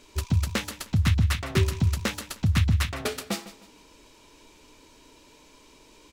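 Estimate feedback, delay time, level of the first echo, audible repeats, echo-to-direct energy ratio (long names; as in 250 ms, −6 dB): 31%, 154 ms, −15.5 dB, 2, −15.0 dB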